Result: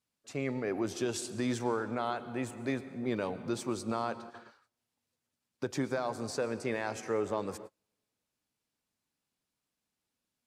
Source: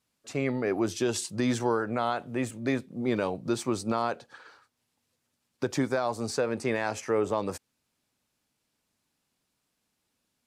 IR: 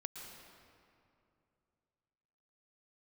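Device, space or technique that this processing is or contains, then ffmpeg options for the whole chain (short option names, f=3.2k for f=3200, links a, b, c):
keyed gated reverb: -filter_complex "[0:a]asplit=3[a][b][c];[1:a]atrim=start_sample=2205[d];[b][d]afir=irnorm=-1:irlink=0[e];[c]apad=whole_len=461565[f];[e][f]sidechaingate=range=-37dB:threshold=-49dB:ratio=16:detection=peak,volume=-3.5dB[g];[a][g]amix=inputs=2:normalize=0,volume=-8.5dB"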